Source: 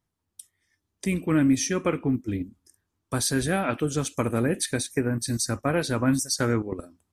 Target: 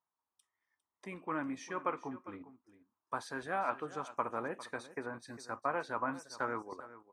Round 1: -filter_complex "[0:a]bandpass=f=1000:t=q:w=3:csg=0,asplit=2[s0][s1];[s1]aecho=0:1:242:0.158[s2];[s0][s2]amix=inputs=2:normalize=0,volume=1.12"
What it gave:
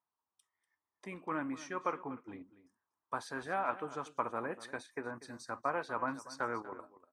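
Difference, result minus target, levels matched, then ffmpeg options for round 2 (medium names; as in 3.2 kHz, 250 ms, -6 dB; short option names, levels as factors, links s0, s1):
echo 161 ms early
-filter_complex "[0:a]bandpass=f=1000:t=q:w=3:csg=0,asplit=2[s0][s1];[s1]aecho=0:1:403:0.158[s2];[s0][s2]amix=inputs=2:normalize=0,volume=1.12"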